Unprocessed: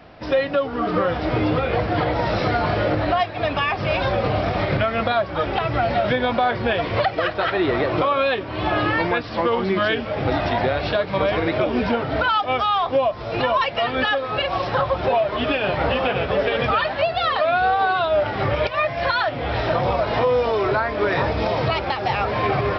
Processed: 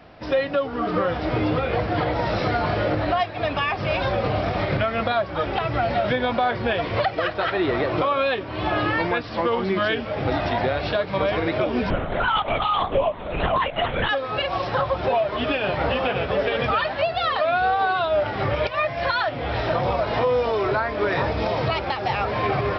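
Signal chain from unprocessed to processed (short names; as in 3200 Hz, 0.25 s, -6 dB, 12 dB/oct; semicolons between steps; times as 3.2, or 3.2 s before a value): 11.9–14.09 LPC vocoder at 8 kHz whisper; gain -2 dB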